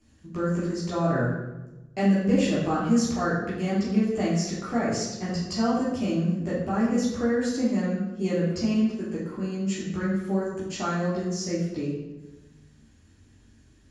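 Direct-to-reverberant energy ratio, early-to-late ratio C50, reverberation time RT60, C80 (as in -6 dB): -8.0 dB, 1.0 dB, 1.1 s, 4.5 dB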